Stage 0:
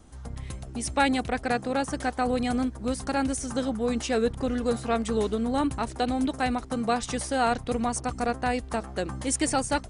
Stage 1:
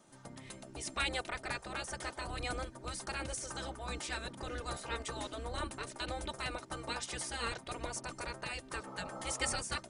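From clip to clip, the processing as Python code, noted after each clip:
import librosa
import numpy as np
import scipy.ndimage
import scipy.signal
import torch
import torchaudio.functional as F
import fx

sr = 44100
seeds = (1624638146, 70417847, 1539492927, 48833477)

y = fx.spec_repair(x, sr, seeds[0], start_s=8.86, length_s=0.69, low_hz=450.0, high_hz=1400.0, source='both')
y = y + 0.52 * np.pad(y, (int(3.3 * sr / 1000.0), 0))[:len(y)]
y = fx.spec_gate(y, sr, threshold_db=-10, keep='weak')
y = y * librosa.db_to_amplitude(-5.0)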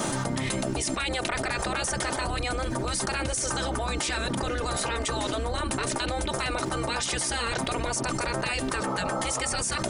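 y = fx.env_flatten(x, sr, amount_pct=100)
y = y * librosa.db_to_amplitude(2.5)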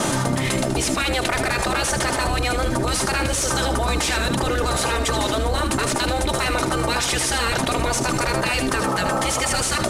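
y = fx.cvsd(x, sr, bps=64000)
y = y + 10.0 ** (-9.0 / 20.0) * np.pad(y, (int(78 * sr / 1000.0), 0))[:len(y)]
y = y * librosa.db_to_amplitude(7.0)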